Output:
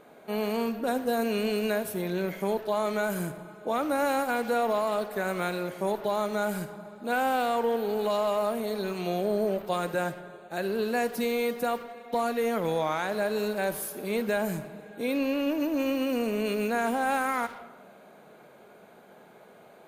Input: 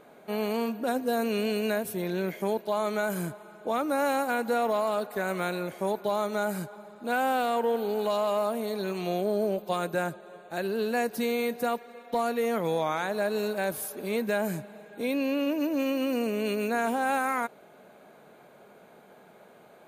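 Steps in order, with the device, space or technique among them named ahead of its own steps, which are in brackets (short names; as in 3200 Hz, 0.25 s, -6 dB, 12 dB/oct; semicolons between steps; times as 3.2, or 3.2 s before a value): saturated reverb return (on a send at -6 dB: reverb RT60 0.85 s, pre-delay 42 ms + soft clip -34 dBFS, distortion -6 dB)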